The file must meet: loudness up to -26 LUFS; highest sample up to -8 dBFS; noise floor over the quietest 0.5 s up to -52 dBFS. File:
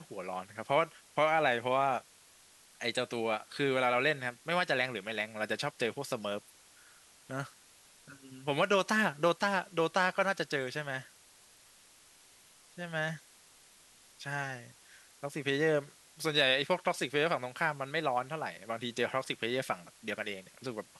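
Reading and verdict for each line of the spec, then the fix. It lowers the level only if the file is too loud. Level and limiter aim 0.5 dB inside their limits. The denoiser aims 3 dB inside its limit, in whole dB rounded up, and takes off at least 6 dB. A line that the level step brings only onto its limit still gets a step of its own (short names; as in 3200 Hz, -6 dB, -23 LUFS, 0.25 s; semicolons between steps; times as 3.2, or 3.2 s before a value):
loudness -32.5 LUFS: OK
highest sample -13.5 dBFS: OK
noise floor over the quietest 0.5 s -61 dBFS: OK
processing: none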